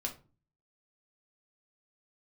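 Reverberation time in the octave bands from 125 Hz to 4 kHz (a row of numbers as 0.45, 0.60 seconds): 0.65, 0.55, 0.40, 0.35, 0.25, 0.20 seconds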